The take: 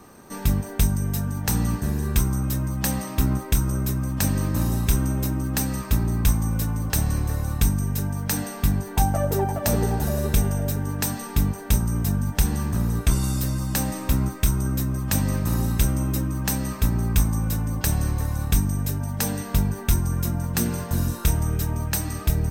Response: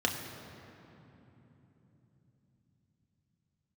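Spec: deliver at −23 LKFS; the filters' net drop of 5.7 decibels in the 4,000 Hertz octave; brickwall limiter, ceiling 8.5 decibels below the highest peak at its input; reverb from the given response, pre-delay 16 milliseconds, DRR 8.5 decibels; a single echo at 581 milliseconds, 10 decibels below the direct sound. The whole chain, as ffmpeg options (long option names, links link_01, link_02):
-filter_complex "[0:a]equalizer=frequency=4000:width_type=o:gain=-7.5,alimiter=limit=-17dB:level=0:latency=1,aecho=1:1:581:0.316,asplit=2[link_01][link_02];[1:a]atrim=start_sample=2205,adelay=16[link_03];[link_02][link_03]afir=irnorm=-1:irlink=0,volume=-17dB[link_04];[link_01][link_04]amix=inputs=2:normalize=0,volume=2.5dB"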